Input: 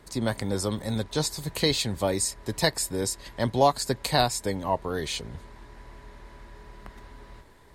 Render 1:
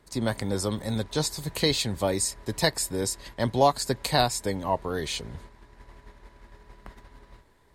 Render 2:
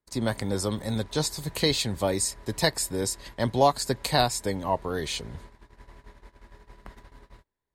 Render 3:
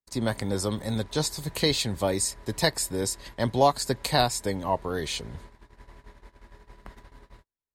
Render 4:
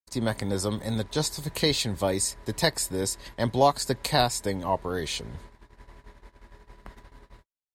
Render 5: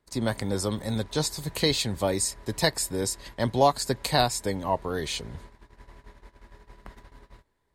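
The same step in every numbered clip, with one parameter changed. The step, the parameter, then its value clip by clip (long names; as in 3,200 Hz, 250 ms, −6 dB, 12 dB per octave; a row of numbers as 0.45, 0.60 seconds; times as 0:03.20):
noise gate, range: −7, −33, −46, −59, −20 decibels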